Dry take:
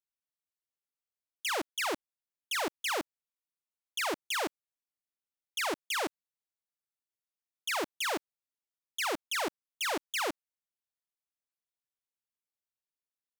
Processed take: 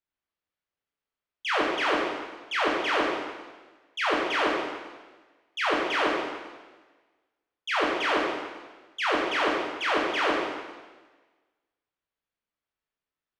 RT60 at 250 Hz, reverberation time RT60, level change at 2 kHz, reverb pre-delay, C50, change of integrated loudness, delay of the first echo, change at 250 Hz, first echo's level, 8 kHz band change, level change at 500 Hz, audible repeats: 1.3 s, 1.3 s, +8.5 dB, 11 ms, 0.5 dB, +7.0 dB, no echo audible, +10.0 dB, no echo audible, −7.5 dB, +10.0 dB, no echo audible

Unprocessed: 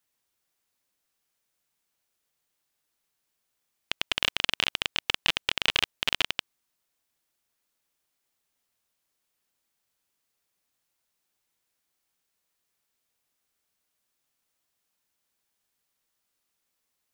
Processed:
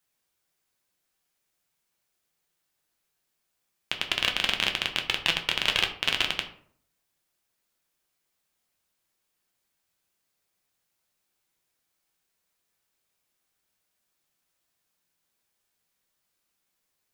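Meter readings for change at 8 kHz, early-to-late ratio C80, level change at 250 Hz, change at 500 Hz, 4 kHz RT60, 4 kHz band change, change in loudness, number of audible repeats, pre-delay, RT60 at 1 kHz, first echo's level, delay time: +0.5 dB, 14.5 dB, +2.5 dB, +2.0 dB, 0.35 s, +1.0 dB, +1.5 dB, no echo audible, 5 ms, 0.55 s, no echo audible, no echo audible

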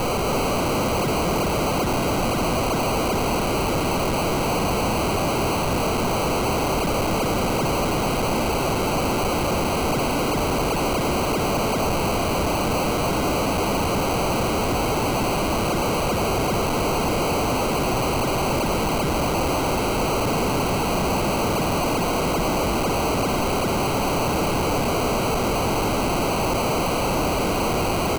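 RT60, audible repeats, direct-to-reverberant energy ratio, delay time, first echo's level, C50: no reverb audible, 1, no reverb audible, 270 ms, −7.0 dB, no reverb audible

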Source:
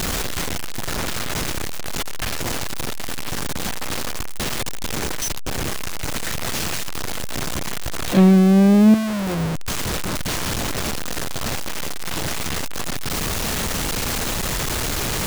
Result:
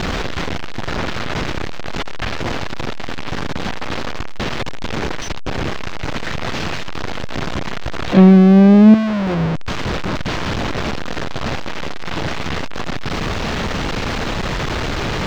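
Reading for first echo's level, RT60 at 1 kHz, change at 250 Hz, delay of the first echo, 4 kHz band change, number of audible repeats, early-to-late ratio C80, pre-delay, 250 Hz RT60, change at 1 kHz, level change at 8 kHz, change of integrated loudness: no echo audible, no reverb audible, +5.0 dB, no echo audible, 0.0 dB, no echo audible, no reverb audible, no reverb audible, no reverb audible, +4.5 dB, below −10 dB, +3.5 dB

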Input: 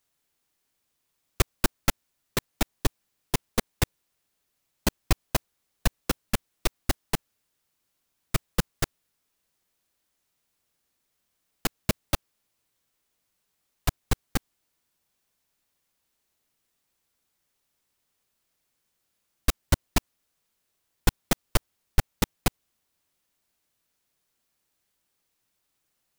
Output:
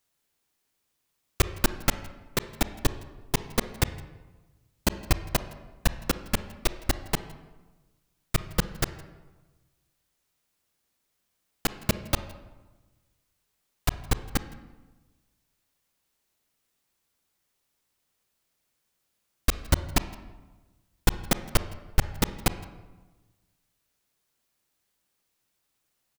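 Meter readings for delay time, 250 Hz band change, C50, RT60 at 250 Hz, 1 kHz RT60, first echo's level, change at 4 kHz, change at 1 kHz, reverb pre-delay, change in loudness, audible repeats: 164 ms, +0.5 dB, 12.5 dB, 1.4 s, 1.2 s, −24.0 dB, 0.0 dB, +0.5 dB, 27 ms, +0.5 dB, 1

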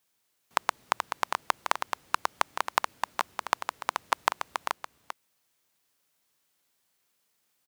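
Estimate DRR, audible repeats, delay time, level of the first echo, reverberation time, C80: no reverb audible, 1, 430 ms, −6.0 dB, no reverb audible, no reverb audible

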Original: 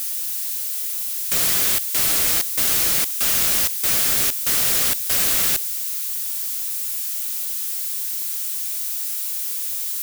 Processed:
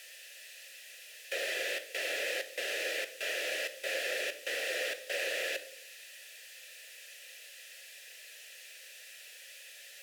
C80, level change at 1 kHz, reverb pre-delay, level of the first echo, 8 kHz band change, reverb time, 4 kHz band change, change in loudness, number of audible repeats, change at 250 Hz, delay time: 17.5 dB, −15.0 dB, 3 ms, no echo audible, −23.5 dB, 0.75 s, −12.5 dB, −15.5 dB, no echo audible, −18.0 dB, no echo audible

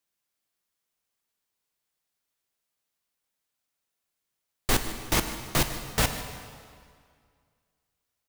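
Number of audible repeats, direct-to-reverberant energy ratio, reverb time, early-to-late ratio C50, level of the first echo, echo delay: 1, 6.5 dB, 2.1 s, 8.0 dB, −17.0 dB, 151 ms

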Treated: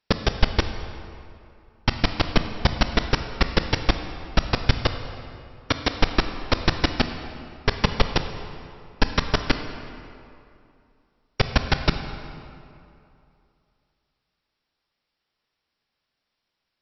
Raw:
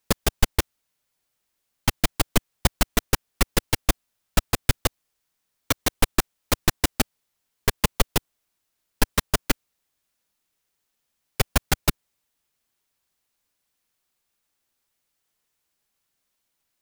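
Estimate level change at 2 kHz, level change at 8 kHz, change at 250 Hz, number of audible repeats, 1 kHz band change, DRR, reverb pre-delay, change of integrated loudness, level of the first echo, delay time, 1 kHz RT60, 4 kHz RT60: +2.0 dB, −16.5 dB, +2.5 dB, no echo audible, +2.5 dB, 7.5 dB, 20 ms, 0.0 dB, no echo audible, no echo audible, 2.7 s, 1.7 s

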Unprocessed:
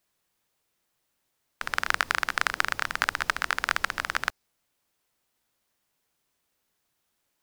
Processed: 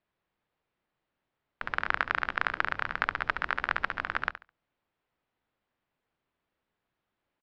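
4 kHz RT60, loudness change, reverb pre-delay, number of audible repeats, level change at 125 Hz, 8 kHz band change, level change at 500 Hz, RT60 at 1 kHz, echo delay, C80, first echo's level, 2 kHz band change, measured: no reverb audible, −3.5 dB, no reverb audible, 2, 0.0 dB, below −25 dB, −1.0 dB, no reverb audible, 70 ms, no reverb audible, −13.0 dB, −3.0 dB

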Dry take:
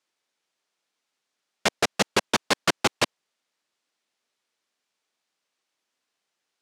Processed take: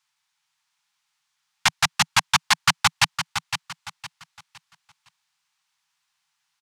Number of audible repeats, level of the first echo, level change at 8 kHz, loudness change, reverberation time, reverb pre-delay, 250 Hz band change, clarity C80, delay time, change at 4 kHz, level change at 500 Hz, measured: 3, −8.5 dB, +6.0 dB, +3.5 dB, no reverb audible, no reverb audible, −8.0 dB, no reverb audible, 511 ms, +5.5 dB, −15.5 dB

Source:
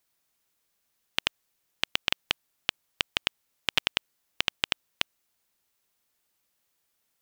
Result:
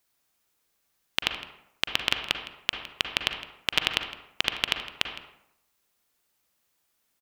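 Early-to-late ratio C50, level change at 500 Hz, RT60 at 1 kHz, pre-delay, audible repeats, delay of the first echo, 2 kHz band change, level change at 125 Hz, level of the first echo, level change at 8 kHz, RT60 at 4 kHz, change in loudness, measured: 6.0 dB, +2.5 dB, 0.80 s, 38 ms, 1, 161 ms, +2.5 dB, +3.0 dB, −18.0 dB, +1.5 dB, 0.45 s, +2.0 dB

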